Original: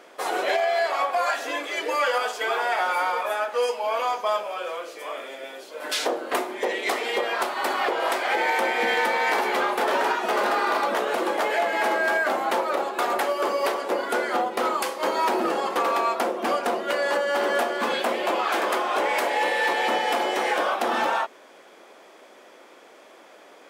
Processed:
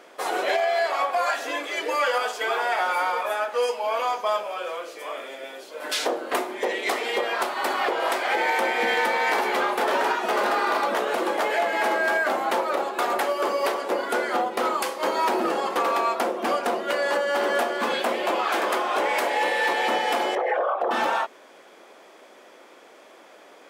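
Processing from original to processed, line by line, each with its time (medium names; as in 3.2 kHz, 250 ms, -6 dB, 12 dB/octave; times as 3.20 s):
20.35–20.91 s: resonances exaggerated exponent 2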